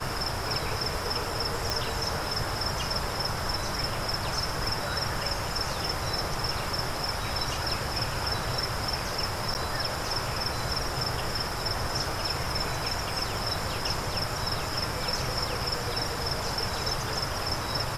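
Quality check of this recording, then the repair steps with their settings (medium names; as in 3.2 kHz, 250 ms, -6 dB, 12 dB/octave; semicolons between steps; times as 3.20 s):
crackle 24 per s -36 dBFS
1.70 s: pop
9.54–9.55 s: dropout 9.4 ms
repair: de-click; interpolate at 9.54 s, 9.4 ms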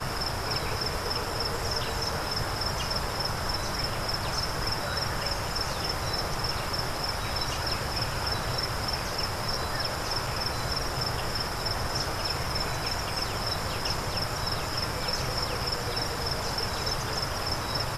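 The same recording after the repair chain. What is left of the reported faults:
1.70 s: pop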